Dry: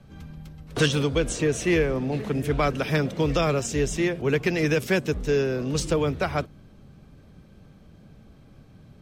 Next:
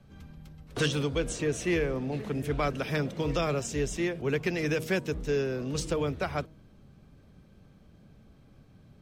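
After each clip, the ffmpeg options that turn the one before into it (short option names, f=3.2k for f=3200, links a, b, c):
-af "bandreject=f=158.6:t=h:w=4,bandreject=f=317.2:t=h:w=4,bandreject=f=475.8:t=h:w=4,bandreject=f=634.4:t=h:w=4,bandreject=f=793:t=h:w=4,bandreject=f=951.6:t=h:w=4,volume=-5.5dB"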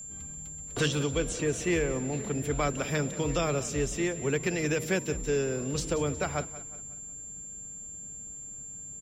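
-af "aecho=1:1:182|364|546|728:0.158|0.0697|0.0307|0.0135,aeval=exprs='val(0)+0.01*sin(2*PI*7300*n/s)':c=same"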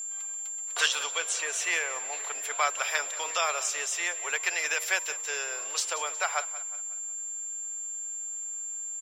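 -af "highpass=f=790:w=0.5412,highpass=f=790:w=1.3066,volume=6.5dB"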